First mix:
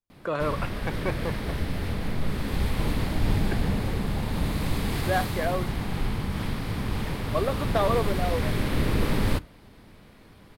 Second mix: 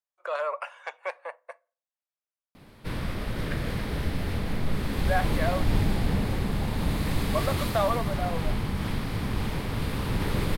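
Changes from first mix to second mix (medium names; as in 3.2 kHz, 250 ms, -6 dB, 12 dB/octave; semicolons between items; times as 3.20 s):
speech: add Chebyshev high-pass 560 Hz, order 4; background: entry +2.45 s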